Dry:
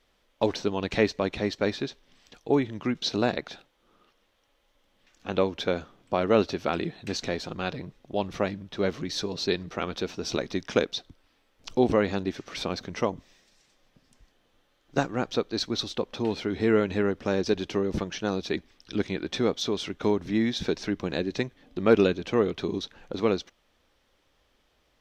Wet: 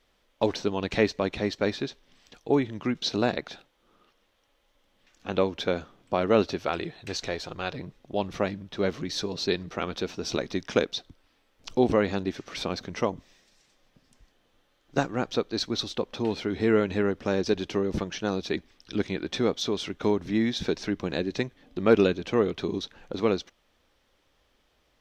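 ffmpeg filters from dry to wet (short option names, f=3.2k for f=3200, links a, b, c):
-filter_complex "[0:a]asettb=1/sr,asplit=3[a][b][c];[a]atrim=end=6.594[d];[b]atrim=start=6.59:end=7.75,asetpts=PTS-STARTPTS,afade=t=in:d=0.004:c=qsin,afade=t=out:st=1.156:d=0.004:c=qsin,equalizer=f=220:w=1.5:g=-8.5[e];[c]atrim=start=7.746[f];[d][e]acrossfade=d=0.004:c1=hsin:c2=qsin[g];[g][f]acrossfade=d=0.004:c1=qsin:c2=hsin"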